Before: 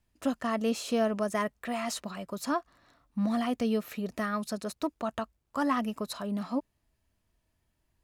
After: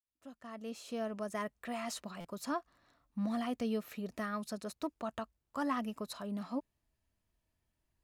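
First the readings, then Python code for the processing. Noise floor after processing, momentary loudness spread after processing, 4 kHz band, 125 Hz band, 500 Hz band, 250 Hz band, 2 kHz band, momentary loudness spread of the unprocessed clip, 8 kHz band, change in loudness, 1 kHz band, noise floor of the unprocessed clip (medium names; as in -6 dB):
-85 dBFS, 10 LU, -8.0 dB, -7.0 dB, -8.5 dB, -7.5 dB, -7.5 dB, 8 LU, -7.5 dB, -7.5 dB, -7.5 dB, -78 dBFS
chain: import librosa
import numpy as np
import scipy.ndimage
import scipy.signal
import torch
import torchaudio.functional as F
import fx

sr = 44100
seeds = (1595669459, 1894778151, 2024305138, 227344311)

y = fx.fade_in_head(x, sr, length_s=1.69)
y = fx.buffer_glitch(y, sr, at_s=(2.2,), block=256, repeats=7)
y = F.gain(torch.from_numpy(y), -6.5).numpy()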